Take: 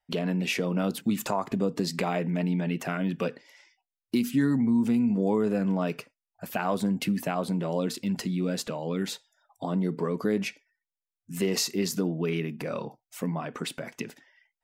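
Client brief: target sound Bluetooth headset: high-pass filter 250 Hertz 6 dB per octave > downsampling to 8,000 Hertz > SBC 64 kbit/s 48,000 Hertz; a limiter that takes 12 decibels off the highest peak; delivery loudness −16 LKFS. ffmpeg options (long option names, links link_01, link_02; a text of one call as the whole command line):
ffmpeg -i in.wav -af "alimiter=level_in=3dB:limit=-24dB:level=0:latency=1,volume=-3dB,highpass=frequency=250:poles=1,aresample=8000,aresample=44100,volume=23dB" -ar 48000 -c:a sbc -b:a 64k out.sbc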